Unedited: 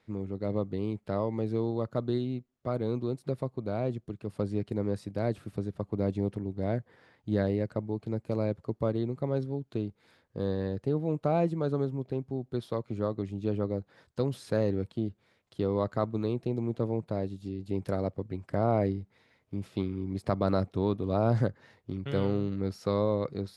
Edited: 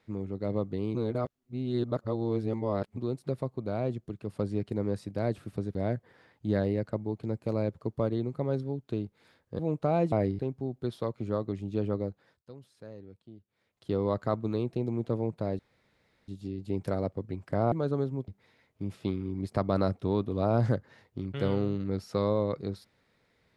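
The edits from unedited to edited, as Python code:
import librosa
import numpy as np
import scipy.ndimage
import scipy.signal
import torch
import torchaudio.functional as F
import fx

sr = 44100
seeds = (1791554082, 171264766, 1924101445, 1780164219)

y = fx.edit(x, sr, fx.reverse_span(start_s=0.95, length_s=2.02),
    fx.cut(start_s=5.75, length_s=0.83),
    fx.cut(start_s=10.42, length_s=0.58),
    fx.swap(start_s=11.53, length_s=0.56, other_s=18.73, other_length_s=0.27),
    fx.fade_down_up(start_s=13.7, length_s=1.93, db=-18.5, fade_s=0.45),
    fx.insert_room_tone(at_s=17.29, length_s=0.69), tone=tone)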